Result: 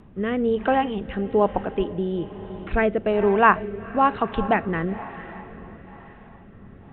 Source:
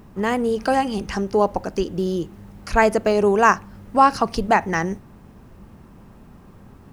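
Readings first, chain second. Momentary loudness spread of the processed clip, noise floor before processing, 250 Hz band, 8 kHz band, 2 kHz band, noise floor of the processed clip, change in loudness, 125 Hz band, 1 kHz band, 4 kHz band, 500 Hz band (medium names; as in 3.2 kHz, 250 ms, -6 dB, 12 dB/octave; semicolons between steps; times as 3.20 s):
19 LU, -47 dBFS, -1.5 dB, under -40 dB, -2.5 dB, -47 dBFS, -2.5 dB, -1.0 dB, -3.0 dB, -6.0 dB, -2.0 dB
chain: echo that smears into a reverb 461 ms, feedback 54%, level -15 dB; resampled via 8 kHz; rotary cabinet horn 1.1 Hz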